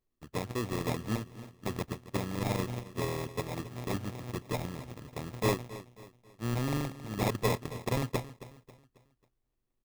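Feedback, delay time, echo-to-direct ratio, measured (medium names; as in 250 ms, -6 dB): 41%, 271 ms, -15.0 dB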